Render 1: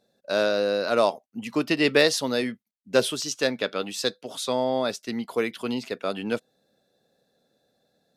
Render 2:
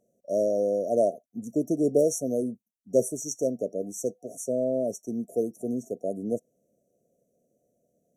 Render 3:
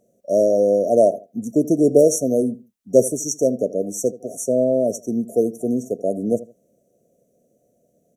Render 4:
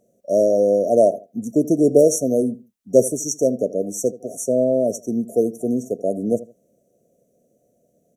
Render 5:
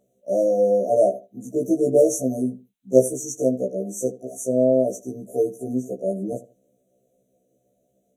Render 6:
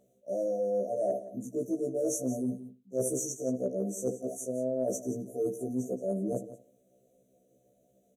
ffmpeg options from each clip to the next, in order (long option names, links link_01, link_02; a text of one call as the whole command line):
ffmpeg -i in.wav -af "afftfilt=real='re*(1-between(b*sr/4096,730,5600))':imag='im*(1-between(b*sr/4096,730,5600))':win_size=4096:overlap=0.75,volume=-1dB" out.wav
ffmpeg -i in.wav -filter_complex "[0:a]asplit=2[link_01][link_02];[link_02]adelay=79,lowpass=frequency=2200:poles=1,volume=-17dB,asplit=2[link_03][link_04];[link_04]adelay=79,lowpass=frequency=2200:poles=1,volume=0.25[link_05];[link_01][link_03][link_05]amix=inputs=3:normalize=0,volume=8.5dB" out.wav
ffmpeg -i in.wav -af anull out.wav
ffmpeg -i in.wav -af "superequalizer=12b=1.58:13b=2:14b=0.398,afftfilt=real='re*1.73*eq(mod(b,3),0)':imag='im*1.73*eq(mod(b,3),0)':win_size=2048:overlap=0.75,volume=-1.5dB" out.wav
ffmpeg -i in.wav -af "areverse,acompressor=threshold=-28dB:ratio=10,areverse,aecho=1:1:173:0.188" out.wav